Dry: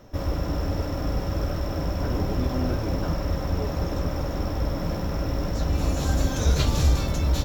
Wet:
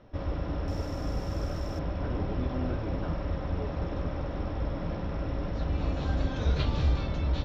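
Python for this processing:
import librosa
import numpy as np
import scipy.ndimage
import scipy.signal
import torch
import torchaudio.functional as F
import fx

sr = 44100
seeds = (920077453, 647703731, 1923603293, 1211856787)

y = fx.lowpass(x, sr, hz=fx.steps((0.0, 4100.0), (0.68, 12000.0), (1.79, 4000.0)), slope=24)
y = y * 10.0 ** (-5.5 / 20.0)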